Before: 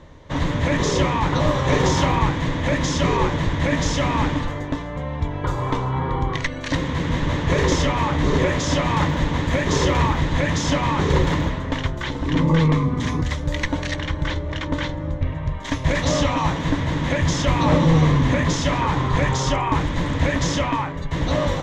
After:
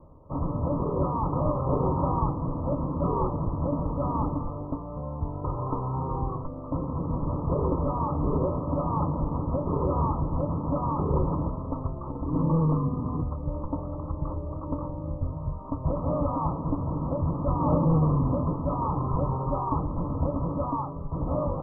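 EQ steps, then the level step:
Chebyshev low-pass filter 1,300 Hz, order 10
−6.0 dB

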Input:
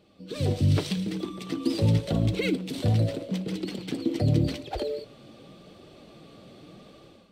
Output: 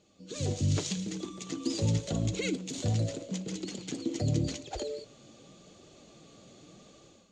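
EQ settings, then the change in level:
low-pass with resonance 6,800 Hz, resonance Q 15
−6.0 dB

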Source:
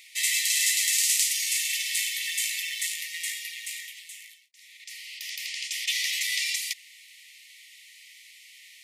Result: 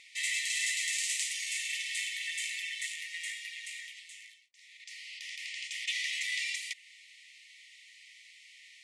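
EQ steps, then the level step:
low-pass filter 8,900 Hz 24 dB per octave
dynamic equaliser 5,100 Hz, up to −5 dB, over −42 dBFS, Q 1.4
high-shelf EQ 2,600 Hz −7.5 dB
0.0 dB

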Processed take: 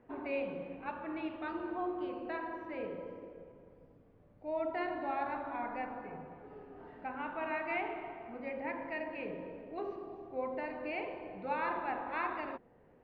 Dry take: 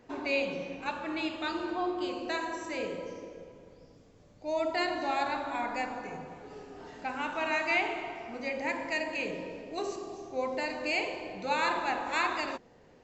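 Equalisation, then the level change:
low-pass filter 2,200 Hz 12 dB per octave
high-frequency loss of the air 260 metres
−4.0 dB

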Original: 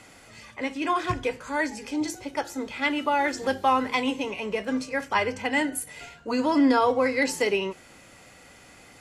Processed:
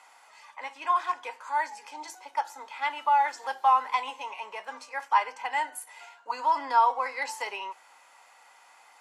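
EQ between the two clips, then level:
high-pass with resonance 910 Hz, resonance Q 4.9
−8.0 dB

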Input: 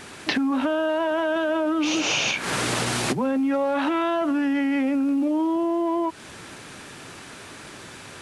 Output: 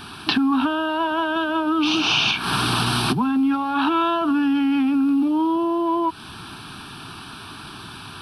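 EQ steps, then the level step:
phaser with its sweep stopped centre 2,000 Hz, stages 6
+7.0 dB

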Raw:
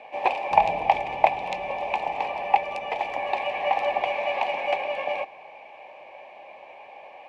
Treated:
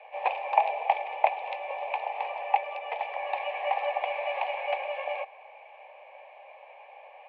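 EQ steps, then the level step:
Butterworth high-pass 460 Hz 48 dB per octave
low-pass filter 3,400 Hz 24 dB per octave
−4.5 dB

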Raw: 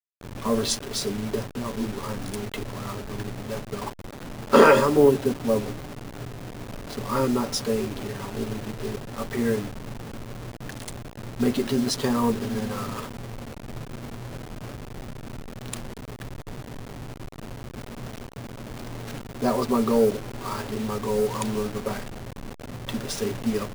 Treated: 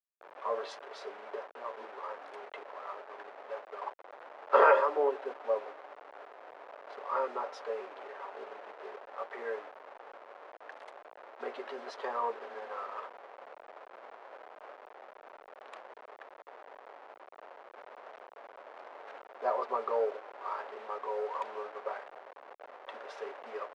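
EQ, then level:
inverse Chebyshev high-pass filter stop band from 160 Hz, stop band 60 dB
low-pass filter 1,500 Hz 12 dB per octave
−3.0 dB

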